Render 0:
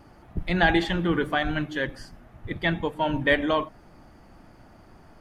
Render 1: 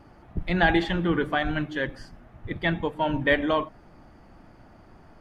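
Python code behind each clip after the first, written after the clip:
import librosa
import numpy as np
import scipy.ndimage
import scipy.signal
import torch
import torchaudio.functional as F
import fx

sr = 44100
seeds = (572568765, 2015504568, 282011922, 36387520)

y = fx.high_shelf(x, sr, hz=6300.0, db=-9.5)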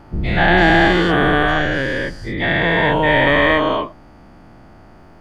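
y = fx.spec_dilate(x, sr, span_ms=480)
y = F.gain(torch.from_numpy(y), 1.5).numpy()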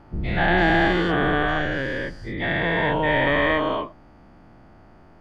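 y = fx.high_shelf(x, sr, hz=6100.0, db=-8.5)
y = F.gain(torch.from_numpy(y), -6.0).numpy()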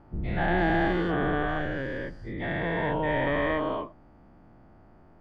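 y = fx.high_shelf(x, sr, hz=2000.0, db=-10.0)
y = F.gain(torch.from_numpy(y), -4.5).numpy()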